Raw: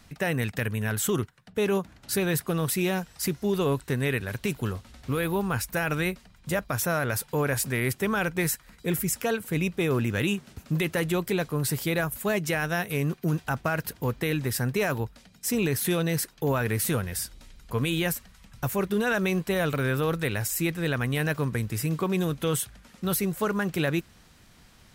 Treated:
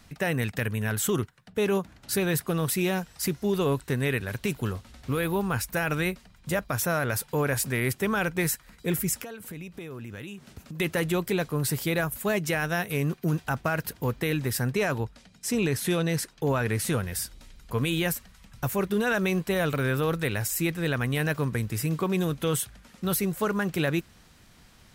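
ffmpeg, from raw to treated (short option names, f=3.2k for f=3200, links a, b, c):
-filter_complex "[0:a]asettb=1/sr,asplit=3[a][b][c];[a]atrim=end=9.224[d];[b]atrim=start=9.22:end=10.8,asetpts=PTS-STARTPTS,afade=t=in:d=0.004:c=qsin,afade=t=out:st=1.576:d=0.004:c=qsin,acompressor=threshold=-36dB:ratio=8:attack=3.2:release=140:knee=1:detection=peak[e];[c]atrim=start=10.796[f];[d][e]acrossfade=d=0.004:c1=hsin:c2=qsin[g];[g][f]acrossfade=d=0.004:c1=qsin:c2=hsin,asettb=1/sr,asplit=3[h][i][j];[h]atrim=end=14.714[k];[i]atrim=start=14.71:end=17,asetpts=PTS-STARTPTS,afade=t=in:d=0.004:c=qsin,afade=t=out:st=2.286:d=0.004:c=qsin,lowpass=10k[l];[j]atrim=start=16.996[m];[k][l]acrossfade=d=0.004:c1=hsin:c2=qsin[n];[n][m]acrossfade=d=0.004:c1=qsin:c2=hsin"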